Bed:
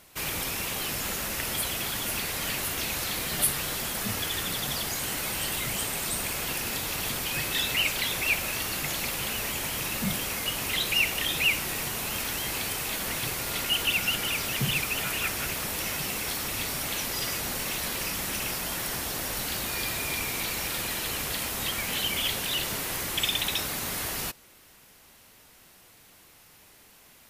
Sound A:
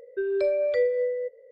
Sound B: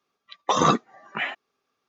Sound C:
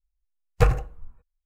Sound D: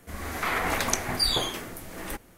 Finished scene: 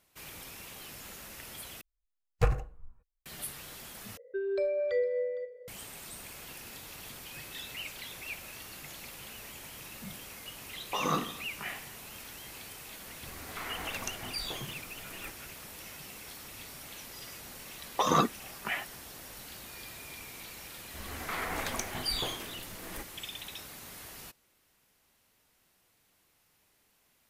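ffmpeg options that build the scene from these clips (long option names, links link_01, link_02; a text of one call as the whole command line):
ffmpeg -i bed.wav -i cue0.wav -i cue1.wav -i cue2.wav -i cue3.wav -filter_complex "[2:a]asplit=2[link_01][link_02];[4:a]asplit=2[link_03][link_04];[0:a]volume=-15dB[link_05];[1:a]aecho=1:1:460:0.112[link_06];[link_01]aecho=1:1:20|50|95|162.5|263.8:0.631|0.398|0.251|0.158|0.1[link_07];[link_04]asoftclip=type=tanh:threshold=-10dB[link_08];[link_05]asplit=3[link_09][link_10][link_11];[link_09]atrim=end=1.814[link_12];[3:a]atrim=end=1.45,asetpts=PTS-STARTPTS,volume=-7.5dB[link_13];[link_10]atrim=start=3.256:end=4.174[link_14];[link_06]atrim=end=1.51,asetpts=PTS-STARTPTS,volume=-6dB[link_15];[link_11]atrim=start=5.676[link_16];[link_07]atrim=end=1.88,asetpts=PTS-STARTPTS,volume=-13.5dB,afade=type=in:duration=0.004:curve=hsin,afade=type=out:start_time=1.876:duration=0.004:curve=hsin,adelay=10440[link_17];[link_03]atrim=end=2.37,asetpts=PTS-STARTPTS,volume=-13dB,afade=type=in:duration=0.004:curve=hsin,afade=type=out:start_time=2.366:duration=0.004:curve=hsin,adelay=13140[link_18];[link_02]atrim=end=1.88,asetpts=PTS-STARTPTS,volume=-6dB,afade=type=in:duration=0.004:curve=hsin,afade=type=out:start_time=1.876:duration=0.004:curve=hsin,adelay=17500[link_19];[link_08]atrim=end=2.37,asetpts=PTS-STARTPTS,volume=-8dB,afade=type=in:duration=0.004:curve=hsin,afade=type=out:start_time=2.366:duration=0.004:curve=hsin,adelay=20860[link_20];[link_12][link_13]acrossfade=duration=0.004:curve1=hsin:curve2=hsin[link_21];[link_21][link_14]acrossfade=duration=0.004:curve1=hsin:curve2=hsin[link_22];[link_22][link_15]acrossfade=duration=0.004:curve1=hsin:curve2=hsin[link_23];[link_23][link_16]acrossfade=duration=0.004:curve1=hsin:curve2=hsin[link_24];[link_24][link_17][link_18][link_19][link_20]amix=inputs=5:normalize=0" out.wav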